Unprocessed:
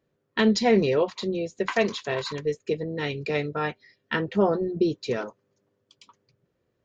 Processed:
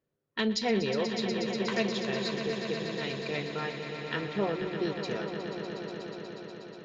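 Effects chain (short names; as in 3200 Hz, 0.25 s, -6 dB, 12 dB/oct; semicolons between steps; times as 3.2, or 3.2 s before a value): dynamic EQ 4000 Hz, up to +6 dB, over -43 dBFS, Q 0.79; on a send: swelling echo 0.121 s, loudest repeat 5, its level -10.5 dB; on the sum: gain -9 dB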